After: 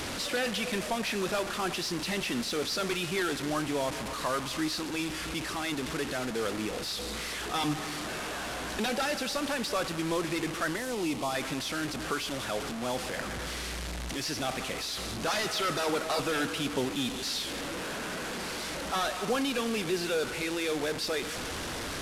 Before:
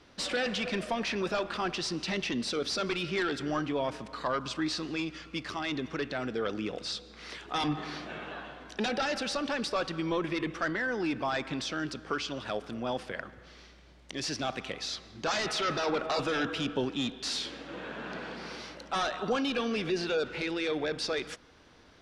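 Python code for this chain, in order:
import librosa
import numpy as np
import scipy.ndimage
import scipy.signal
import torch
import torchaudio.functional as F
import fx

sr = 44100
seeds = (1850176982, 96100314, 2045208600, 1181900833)

y = fx.delta_mod(x, sr, bps=64000, step_db=-30.0)
y = fx.peak_eq(y, sr, hz=1600.0, db=-13.5, octaves=0.36, at=(10.76, 11.35))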